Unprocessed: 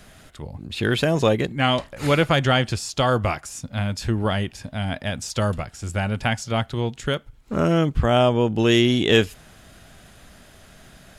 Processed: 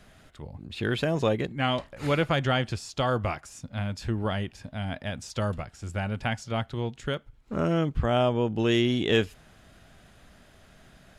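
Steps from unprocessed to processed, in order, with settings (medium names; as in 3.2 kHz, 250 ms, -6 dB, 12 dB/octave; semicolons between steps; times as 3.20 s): treble shelf 5.7 kHz -7.5 dB; trim -6 dB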